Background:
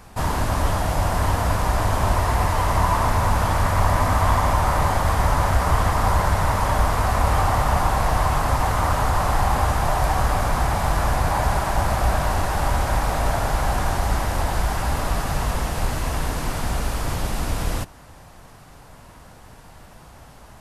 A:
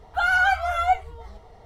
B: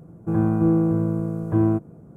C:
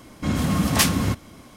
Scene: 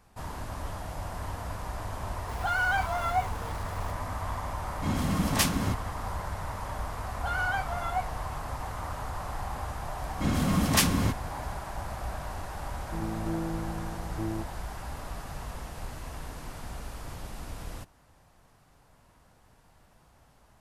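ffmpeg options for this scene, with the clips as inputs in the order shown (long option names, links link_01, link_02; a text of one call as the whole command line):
ffmpeg -i bed.wav -i cue0.wav -i cue1.wav -i cue2.wav -filter_complex "[1:a]asplit=2[link_01][link_02];[3:a]asplit=2[link_03][link_04];[0:a]volume=-15.5dB[link_05];[link_01]aeval=exprs='val(0)+0.5*0.0282*sgn(val(0))':channel_layout=same,atrim=end=1.65,asetpts=PTS-STARTPTS,volume=-8.5dB,afade=type=in:duration=0.004:curve=hsin,afade=type=out:start_time=1.646:duration=0.004:curve=hsin,adelay=2270[link_06];[link_03]atrim=end=1.56,asetpts=PTS-STARTPTS,volume=-7dB,afade=type=in:duration=0.004:curve=hsin,afade=type=out:start_time=1.556:duration=0.004:curve=hsin,adelay=4600[link_07];[link_02]atrim=end=1.65,asetpts=PTS-STARTPTS,volume=-11dB,afade=type=in:duration=0.004:curve=hsin,afade=type=out:start_time=1.646:duration=0.004:curve=hsin,adelay=7070[link_08];[link_04]atrim=end=1.56,asetpts=PTS-STARTPTS,volume=-4.5dB,afade=type=in:duration=0.004:curve=hsin,afade=type=out:start_time=1.556:duration=0.004:curve=hsin,adelay=9980[link_09];[2:a]atrim=end=2.16,asetpts=PTS-STARTPTS,volume=-14.5dB,afade=type=in:duration=0.004:curve=hsin,afade=type=out:start_time=2.156:duration=0.004:curve=hsin,adelay=12650[link_10];[link_05][link_06][link_07][link_08][link_09][link_10]amix=inputs=6:normalize=0" out.wav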